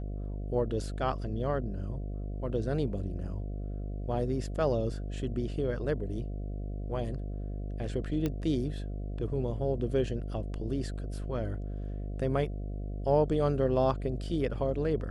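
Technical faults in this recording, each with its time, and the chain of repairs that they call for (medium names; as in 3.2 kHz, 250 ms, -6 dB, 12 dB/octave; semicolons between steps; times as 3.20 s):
buzz 50 Hz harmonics 14 -36 dBFS
8.26 s: pop -18 dBFS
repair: de-click; de-hum 50 Hz, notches 14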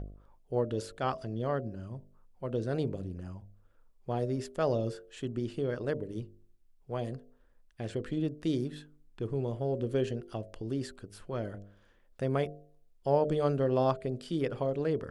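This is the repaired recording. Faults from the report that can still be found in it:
8.26 s: pop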